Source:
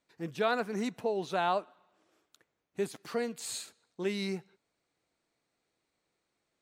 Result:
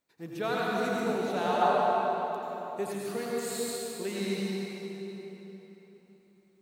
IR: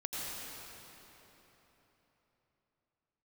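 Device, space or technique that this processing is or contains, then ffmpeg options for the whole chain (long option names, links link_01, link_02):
swimming-pool hall: -filter_complex "[1:a]atrim=start_sample=2205[link_01];[0:a][link_01]afir=irnorm=-1:irlink=0,highshelf=frequency=3500:gain=-8,asettb=1/sr,asplit=3[link_02][link_03][link_04];[link_02]atrim=end=1.614[link_05];[link_03]atrim=start=1.61:end=2.93,asetpts=PTS-STARTPTS,afade=type=in:duration=0.004:curve=qsin,afade=type=out:start_time=1.316:duration=0.004:curve=qsin,equalizer=frequency=810:width_type=o:width=1.6:gain=6[link_06];[link_04]atrim=start=2.926[link_07];[link_05][link_06]acrossfade=duration=0.004:curve1=hsin:curve2=qsin[link_08];[link_08][link_07]acrossfade=duration=0.004:curve1=qsin:curve2=hsin,asettb=1/sr,asplit=3[link_09][link_10][link_11];[link_09]atrim=end=3.514[link_12];[link_10]atrim=start=3.51:end=4.08,asetpts=PTS-STARTPTS,afade=type=in:duration=0.004:curve=qsin,afade=type=out:start_time=0.566:duration=0.004:curve=qsin,bandreject=frequency=6500:width=13[link_13];[link_11]atrim=start=4.076[link_14];[link_12][link_13]acrossfade=duration=0.004:curve1=hsin:curve2=qsin[link_15];[link_15][link_14]acrossfade=duration=0.004:curve1=qsin:curve2=hsin,aemphasis=mode=production:type=50fm"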